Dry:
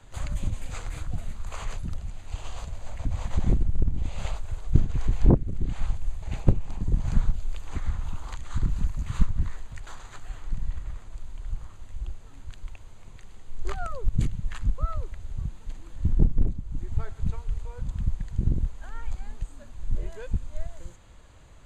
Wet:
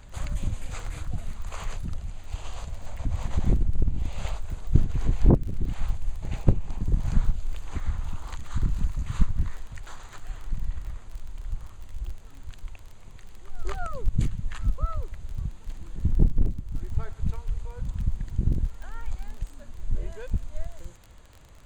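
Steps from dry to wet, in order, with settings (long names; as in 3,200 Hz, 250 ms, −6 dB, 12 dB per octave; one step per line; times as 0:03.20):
surface crackle 24 per second −36 dBFS
echo ahead of the sound 238 ms −19 dB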